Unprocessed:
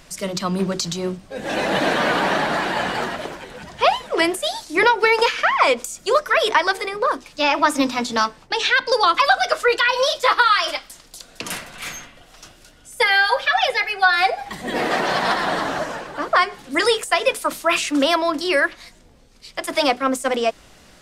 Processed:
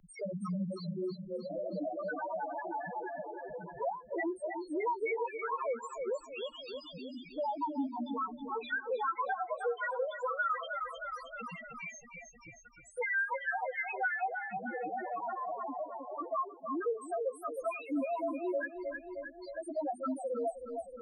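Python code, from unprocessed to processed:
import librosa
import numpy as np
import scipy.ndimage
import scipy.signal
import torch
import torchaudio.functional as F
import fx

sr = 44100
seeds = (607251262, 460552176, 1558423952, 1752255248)

y = fx.spec_repair(x, sr, seeds[0], start_s=6.18, length_s=0.99, low_hz=250.0, high_hz=2500.0, source='after')
y = fx.peak_eq(y, sr, hz=380.0, db=5.5, octaves=1.6, at=(6.95, 7.41))
y = fx.spec_topn(y, sr, count=1)
y = fx.doubler(y, sr, ms=17.0, db=-6.0, at=(1.25, 1.88), fade=0.02)
y = fx.echo_feedback(y, sr, ms=312, feedback_pct=41, wet_db=-10)
y = fx.band_squash(y, sr, depth_pct=70)
y = y * 10.0 ** (-7.5 / 20.0)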